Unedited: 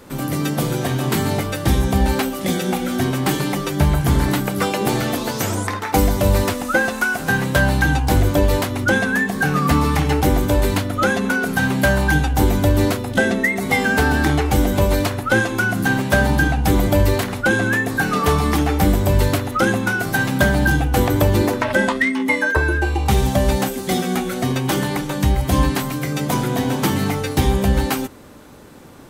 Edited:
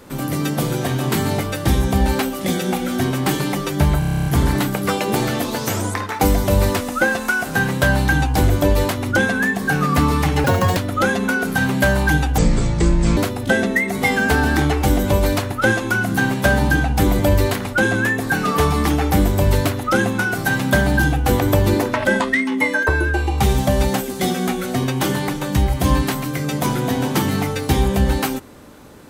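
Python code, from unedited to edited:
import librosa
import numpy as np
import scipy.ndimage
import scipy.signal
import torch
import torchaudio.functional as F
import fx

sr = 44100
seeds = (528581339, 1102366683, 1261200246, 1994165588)

y = fx.edit(x, sr, fx.stutter(start_s=3.99, slice_s=0.03, count=10),
    fx.speed_span(start_s=10.17, length_s=0.61, speed=1.86),
    fx.speed_span(start_s=12.39, length_s=0.46, speed=0.58), tone=tone)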